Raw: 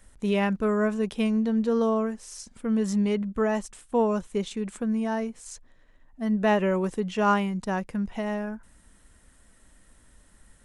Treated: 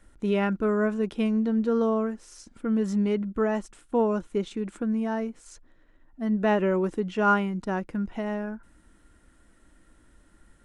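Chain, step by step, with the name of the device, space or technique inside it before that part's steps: inside a helmet (high shelf 5200 Hz -9 dB; small resonant body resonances 320/1400 Hz, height 10 dB); gain -1.5 dB

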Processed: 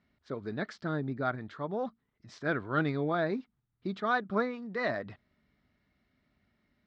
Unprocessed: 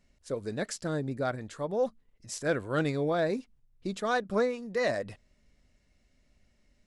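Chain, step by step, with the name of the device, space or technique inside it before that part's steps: guitar cabinet (speaker cabinet 99–3800 Hz, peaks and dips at 520 Hz -9 dB, 1300 Hz +5 dB, 2700 Hz -7 dB)

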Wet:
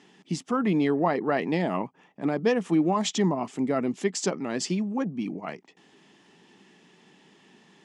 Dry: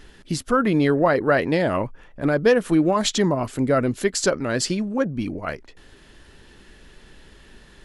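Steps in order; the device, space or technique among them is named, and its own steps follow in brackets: television speaker (speaker cabinet 170–7700 Hz, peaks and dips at 180 Hz +5 dB, 550 Hz -8 dB, 810 Hz +5 dB, 1500 Hz -10 dB, 4200 Hz -7 dB); gain -4 dB

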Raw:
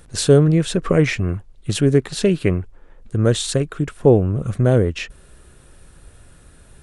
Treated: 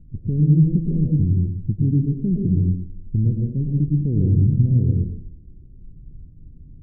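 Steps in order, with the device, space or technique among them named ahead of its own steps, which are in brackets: club heard from the street (limiter -12.5 dBFS, peak gain reduction 11 dB; LPF 250 Hz 24 dB/oct; reverb RT60 0.70 s, pre-delay 99 ms, DRR -1 dB); gain +2.5 dB

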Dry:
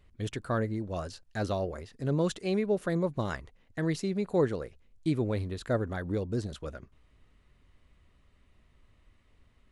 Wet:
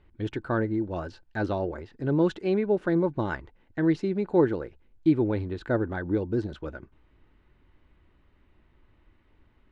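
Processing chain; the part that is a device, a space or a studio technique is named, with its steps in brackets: inside a cardboard box (LPF 3200 Hz 12 dB/oct; small resonant body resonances 330/870/1500 Hz, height 9 dB, ringing for 35 ms); gain +1 dB

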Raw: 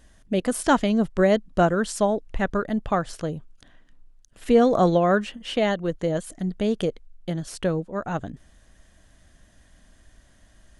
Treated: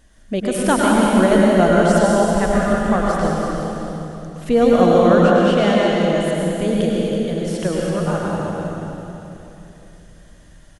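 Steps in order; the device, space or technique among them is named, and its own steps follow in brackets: cave (echo 0.329 s -9 dB; reverb RT60 3.2 s, pre-delay 94 ms, DRR -4 dB); gain +1 dB

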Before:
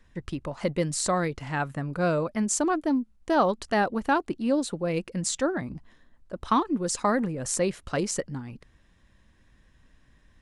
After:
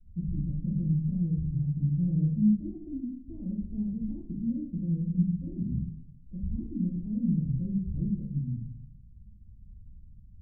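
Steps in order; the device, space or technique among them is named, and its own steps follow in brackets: club heard from the street (limiter -21 dBFS, peak gain reduction 10 dB; LPF 160 Hz 24 dB/oct; reverb RT60 0.75 s, pre-delay 6 ms, DRR -6 dB); gain +3.5 dB

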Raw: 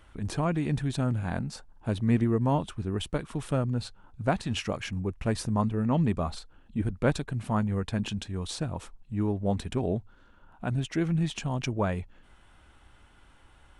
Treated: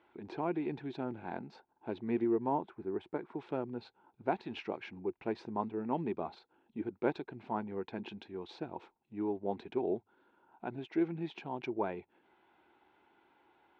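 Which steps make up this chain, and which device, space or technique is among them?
phone earpiece (speaker cabinet 340–3200 Hz, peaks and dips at 360 Hz +9 dB, 570 Hz -6 dB, 870 Hz +5 dB, 1200 Hz -9 dB, 1800 Hz -7 dB, 3000 Hz -8 dB); 2.49–3.39 band shelf 4200 Hz -9.5 dB; gain -4 dB

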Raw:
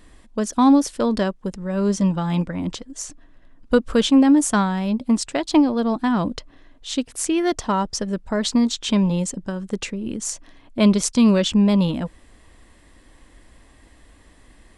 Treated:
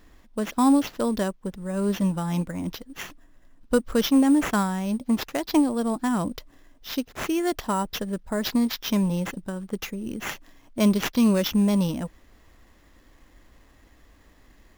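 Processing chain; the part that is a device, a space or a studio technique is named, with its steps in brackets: early companding sampler (sample-rate reducer 8900 Hz, jitter 0%; companded quantiser 8-bit); gain -4.5 dB

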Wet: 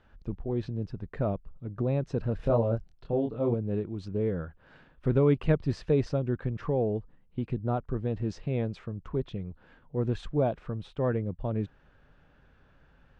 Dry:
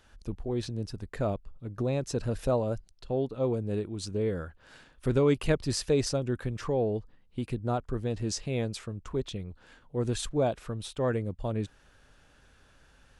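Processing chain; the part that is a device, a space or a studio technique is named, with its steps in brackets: 2.37–3.54 doubler 26 ms -3 dB; phone in a pocket (LPF 3300 Hz 12 dB/oct; bell 160 Hz +5 dB 0.62 oct; high shelf 2500 Hz -9 dB)

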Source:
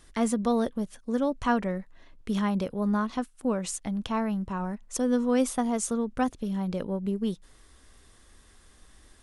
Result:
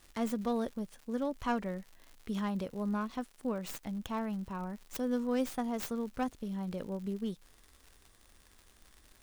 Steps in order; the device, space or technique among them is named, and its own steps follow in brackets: record under a worn stylus (tracing distortion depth 0.17 ms; crackle 130/s -37 dBFS; white noise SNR 38 dB); gain -7.5 dB

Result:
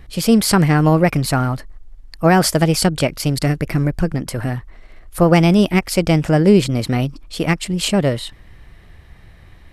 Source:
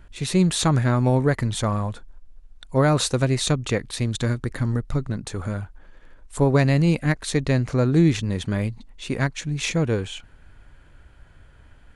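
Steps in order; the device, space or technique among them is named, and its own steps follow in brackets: nightcore (varispeed +23%); gain +6 dB

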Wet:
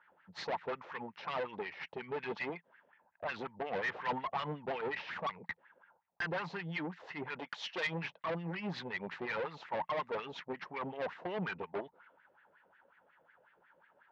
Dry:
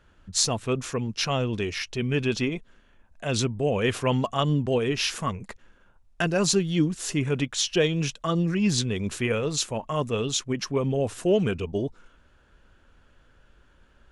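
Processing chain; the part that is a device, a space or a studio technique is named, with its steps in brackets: wah-wah guitar rig (wah 5.5 Hz 500–2000 Hz, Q 4; tube stage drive 40 dB, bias 0.55; speaker cabinet 89–4400 Hz, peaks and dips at 170 Hz +10 dB, 880 Hz +9 dB, 2000 Hz +5 dB); 7.39–7.87 RIAA curve recording; gain +5.5 dB

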